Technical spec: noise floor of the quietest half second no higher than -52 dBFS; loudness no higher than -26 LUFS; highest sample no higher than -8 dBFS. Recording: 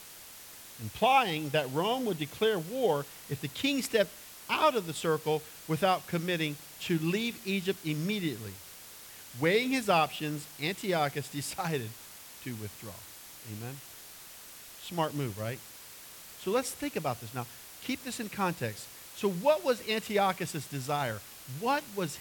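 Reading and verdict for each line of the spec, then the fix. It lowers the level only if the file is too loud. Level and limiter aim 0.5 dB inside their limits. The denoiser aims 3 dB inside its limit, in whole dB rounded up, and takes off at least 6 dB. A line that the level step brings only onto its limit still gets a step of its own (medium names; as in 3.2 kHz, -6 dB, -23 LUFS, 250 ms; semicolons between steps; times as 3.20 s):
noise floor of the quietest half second -49 dBFS: fail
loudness -31.5 LUFS: pass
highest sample -13.0 dBFS: pass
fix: noise reduction 6 dB, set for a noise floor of -49 dBFS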